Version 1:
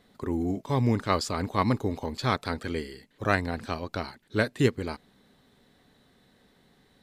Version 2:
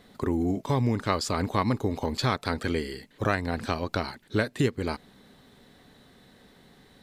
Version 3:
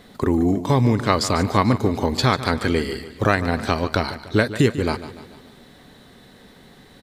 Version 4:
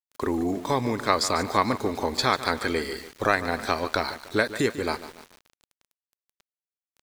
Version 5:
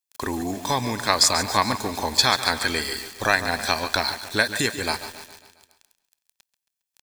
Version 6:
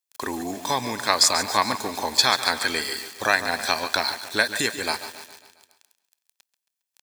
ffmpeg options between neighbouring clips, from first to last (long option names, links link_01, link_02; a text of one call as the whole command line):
ffmpeg -i in.wav -af "acompressor=threshold=-30dB:ratio=3,volume=6.5dB" out.wav
ffmpeg -i in.wav -af "aecho=1:1:146|292|438|584|730:0.2|0.102|0.0519|0.0265|0.0135,volume=7.5dB" out.wav
ffmpeg -i in.wav -af "equalizer=frequency=120:width=0.59:gain=-13.5,bandreject=frequency=2900:width=5.4,aeval=exprs='val(0)*gte(abs(val(0)),0.00944)':channel_layout=same,volume=-1.5dB" out.wav
ffmpeg -i in.wav -af "highshelf=frequency=2200:gain=11.5,aecho=1:1:1.2:0.37,aecho=1:1:136|272|408|544|680|816:0.168|0.0957|0.0545|0.0311|0.0177|0.0101,volume=-1dB" out.wav
ffmpeg -i in.wav -af "highpass=frequency=270:poles=1" out.wav